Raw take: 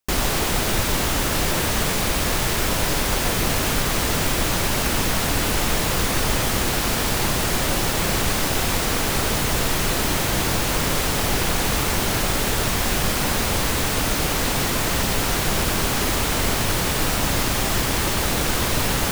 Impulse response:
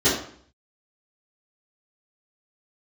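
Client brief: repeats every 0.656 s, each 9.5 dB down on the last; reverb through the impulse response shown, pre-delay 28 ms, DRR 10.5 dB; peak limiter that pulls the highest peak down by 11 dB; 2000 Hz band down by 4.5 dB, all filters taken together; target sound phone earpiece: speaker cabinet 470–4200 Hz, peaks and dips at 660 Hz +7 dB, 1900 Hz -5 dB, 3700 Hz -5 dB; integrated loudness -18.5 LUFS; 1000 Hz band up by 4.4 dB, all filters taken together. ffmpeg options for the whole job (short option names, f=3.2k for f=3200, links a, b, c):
-filter_complex "[0:a]equalizer=f=1k:t=o:g=5.5,equalizer=f=2k:t=o:g=-5,alimiter=limit=-17.5dB:level=0:latency=1,aecho=1:1:656|1312|1968|2624:0.335|0.111|0.0365|0.012,asplit=2[a][b];[1:a]atrim=start_sample=2205,adelay=28[c];[b][c]afir=irnorm=-1:irlink=0,volume=-28.5dB[d];[a][d]amix=inputs=2:normalize=0,highpass=470,equalizer=f=660:t=q:w=4:g=7,equalizer=f=1.9k:t=q:w=4:g=-5,equalizer=f=3.7k:t=q:w=4:g=-5,lowpass=f=4.2k:w=0.5412,lowpass=f=4.2k:w=1.3066,volume=10.5dB"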